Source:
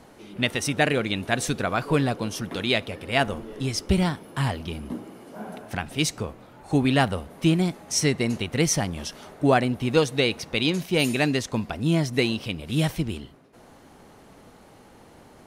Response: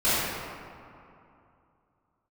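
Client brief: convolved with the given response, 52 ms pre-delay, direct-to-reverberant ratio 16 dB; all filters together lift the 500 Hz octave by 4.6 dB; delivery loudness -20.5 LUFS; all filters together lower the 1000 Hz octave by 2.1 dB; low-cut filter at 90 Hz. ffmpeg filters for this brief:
-filter_complex "[0:a]highpass=90,equalizer=f=500:t=o:g=7.5,equalizer=f=1k:t=o:g=-8,asplit=2[a][b];[1:a]atrim=start_sample=2205,adelay=52[c];[b][c]afir=irnorm=-1:irlink=0,volume=-33dB[d];[a][d]amix=inputs=2:normalize=0,volume=3dB"

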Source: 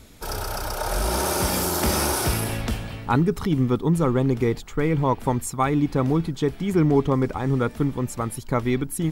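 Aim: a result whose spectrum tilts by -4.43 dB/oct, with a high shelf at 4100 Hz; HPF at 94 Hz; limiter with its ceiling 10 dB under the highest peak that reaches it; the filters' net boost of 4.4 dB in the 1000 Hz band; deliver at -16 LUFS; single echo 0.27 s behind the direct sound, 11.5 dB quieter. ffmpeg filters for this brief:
-af "highpass=94,equalizer=f=1k:t=o:g=5,highshelf=f=4.1k:g=6,alimiter=limit=-15.5dB:level=0:latency=1,aecho=1:1:270:0.266,volume=9dB"

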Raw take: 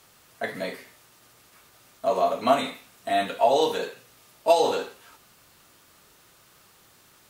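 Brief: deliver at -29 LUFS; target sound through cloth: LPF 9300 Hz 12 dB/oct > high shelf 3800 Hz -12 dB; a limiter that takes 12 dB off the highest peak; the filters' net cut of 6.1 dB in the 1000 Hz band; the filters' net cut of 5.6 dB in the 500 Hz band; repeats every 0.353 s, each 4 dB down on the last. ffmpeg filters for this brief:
-af "equalizer=f=500:t=o:g=-4.5,equalizer=f=1k:t=o:g=-6,alimiter=limit=-22.5dB:level=0:latency=1,lowpass=9.3k,highshelf=f=3.8k:g=-12,aecho=1:1:353|706|1059|1412|1765|2118|2471|2824|3177:0.631|0.398|0.25|0.158|0.0994|0.0626|0.0394|0.0249|0.0157,volume=6dB"

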